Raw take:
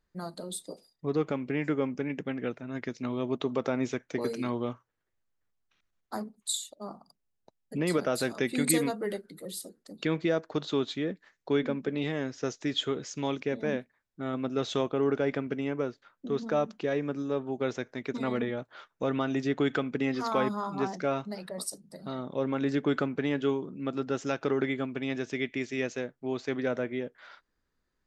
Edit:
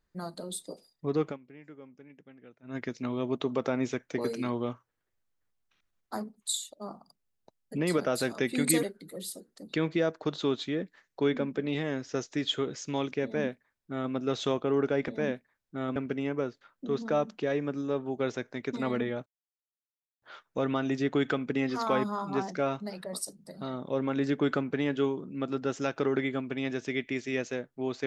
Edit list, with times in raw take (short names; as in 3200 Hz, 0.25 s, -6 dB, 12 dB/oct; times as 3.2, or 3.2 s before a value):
1.25–2.75 dip -20 dB, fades 0.13 s
8.83–9.12 cut
13.53–14.41 copy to 15.37
18.67 insert silence 0.96 s